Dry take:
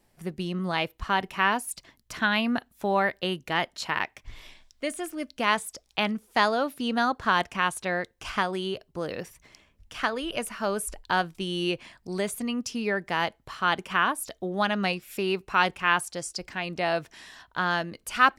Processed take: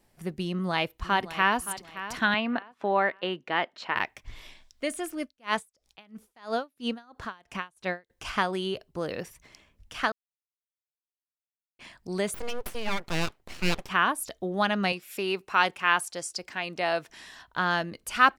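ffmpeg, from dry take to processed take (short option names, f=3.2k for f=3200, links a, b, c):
-filter_complex "[0:a]asplit=2[a][b];[b]afade=t=in:st=0.47:d=0.01,afade=t=out:st=1.6:d=0.01,aecho=0:1:570|1140|1710:0.211349|0.0634047|0.0190214[c];[a][c]amix=inputs=2:normalize=0,asettb=1/sr,asplit=3[d][e][f];[d]atrim=end=2.344[g];[e]atrim=start=2.34:end=3.96,asetpts=PTS-STARTPTS,afade=t=in:d=0.004:c=qsin,afade=t=out:st=1.616:d=0.004:c=qsin,highpass=250,lowpass=3k[h];[f]atrim=start=3.956[i];[g][h]acrossfade=d=0.004:c1=hsin:c2=qsin[j];[j][i]acrossfade=d=0.004:c1=qsin:c2=hsin,asettb=1/sr,asplit=3[k][l][m];[k]atrim=end=5.224[n];[l]atrim=start=5.22:end=8.1,asetpts=PTS-STARTPTS,afade=t=in:d=0.004:c=qsin,afade=t=out:st=2.876:d=0.004:c=qsin,aeval=exprs='val(0)*pow(10,-33*(0.5-0.5*cos(2*PI*3*n/s))/20)':c=same[o];[m]atrim=start=8.096[p];[n][o]acrossfade=d=0.004:c1=hsin:c2=qsin[q];[q][p]acrossfade=d=0.004:c1=qsin:c2=hsin,asettb=1/sr,asplit=3[r][s][t];[r]atrim=end=12.344[u];[s]atrim=start=12.34:end=13.89,asetpts=PTS-STARTPTS,afade=t=in:d=0.004:c=qsin,afade=t=out:st=1.546:d=0.004:c=qsin,aeval=exprs='abs(val(0))':c=same[v];[t]atrim=start=13.886[w];[u][v]acrossfade=d=0.004:c1=hsin:c2=qsin[x];[x][w]acrossfade=d=0.004:c1=qsin:c2=hsin,asettb=1/sr,asplit=3[y][z][aa];[y]atrim=end=14.924[ab];[z]atrim=start=14.92:end=17.09,asetpts=PTS-STARTPTS,afade=t=in:d=0.004:c=qsin,afade=t=out:st=2.166:d=0.004:c=qsin,highpass=f=320:p=1[ac];[aa]atrim=start=17.086[ad];[ab][ac]acrossfade=d=0.004:c1=hsin:c2=qsin[ae];[ae][ad]acrossfade=d=0.004:c1=qsin:c2=hsin,asplit=3[af][ag][ah];[af]atrim=end=10.12,asetpts=PTS-STARTPTS,afade=t=out:st=10.116:d=0.004:c=hsin[ai];[ag]atrim=start=10.12:end=11.79,asetpts=PTS-STARTPTS,volume=0[aj];[ah]atrim=start=11.79,asetpts=PTS-STARTPTS,afade=t=in:d=0.004:c=hsin[ak];[ai][aj][ak]concat=n=3:v=0:a=1"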